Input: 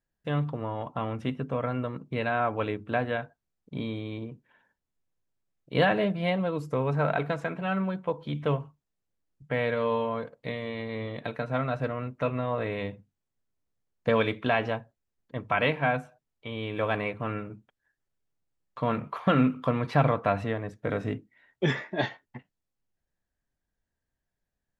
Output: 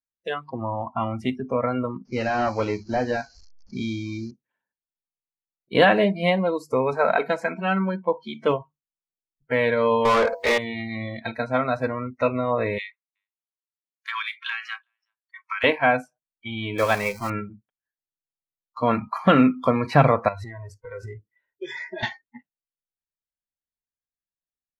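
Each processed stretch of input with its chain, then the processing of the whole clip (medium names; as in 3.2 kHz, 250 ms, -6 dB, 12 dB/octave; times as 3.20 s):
2.05–4.31 s: one-bit delta coder 32 kbps, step -43 dBFS + tape noise reduction on one side only decoder only
10.05–10.58 s: de-hum 96.73 Hz, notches 10 + overdrive pedal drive 31 dB, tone 2.5 kHz, clips at -18.5 dBFS
12.78–15.64 s: steep high-pass 1.1 kHz + compression 8:1, threshold -31 dBFS + delay 372 ms -23 dB
16.78–17.30 s: jump at every zero crossing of -32.5 dBFS + bass shelf 500 Hz -2.5 dB + upward expansion, over -35 dBFS
20.28–22.03 s: comb 2 ms, depth 51% + compression 12:1, threshold -33 dBFS
whole clip: spectral noise reduction 26 dB; bass shelf 130 Hz -4 dB; trim +7.5 dB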